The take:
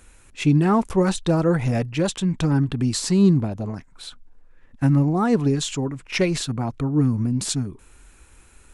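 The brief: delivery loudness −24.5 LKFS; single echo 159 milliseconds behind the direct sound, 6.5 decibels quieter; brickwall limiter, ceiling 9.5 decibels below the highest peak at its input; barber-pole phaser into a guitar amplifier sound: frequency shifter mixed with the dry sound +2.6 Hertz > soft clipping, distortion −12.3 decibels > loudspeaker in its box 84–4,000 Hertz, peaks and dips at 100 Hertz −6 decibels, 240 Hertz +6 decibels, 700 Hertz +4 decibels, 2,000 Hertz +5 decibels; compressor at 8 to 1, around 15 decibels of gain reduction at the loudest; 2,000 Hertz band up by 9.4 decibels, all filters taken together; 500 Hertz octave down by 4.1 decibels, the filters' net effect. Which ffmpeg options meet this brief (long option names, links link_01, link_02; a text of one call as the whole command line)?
ffmpeg -i in.wav -filter_complex "[0:a]equalizer=frequency=500:width_type=o:gain=-7.5,equalizer=frequency=2000:width_type=o:gain=9,acompressor=threshold=-30dB:ratio=8,alimiter=level_in=2dB:limit=-24dB:level=0:latency=1,volume=-2dB,aecho=1:1:159:0.473,asplit=2[link_01][link_02];[link_02]afreqshift=2.6[link_03];[link_01][link_03]amix=inputs=2:normalize=1,asoftclip=threshold=-35dB,highpass=84,equalizer=frequency=100:width_type=q:width=4:gain=-6,equalizer=frequency=240:width_type=q:width=4:gain=6,equalizer=frequency=700:width_type=q:width=4:gain=4,equalizer=frequency=2000:width_type=q:width=4:gain=5,lowpass=frequency=4000:width=0.5412,lowpass=frequency=4000:width=1.3066,volume=15.5dB" out.wav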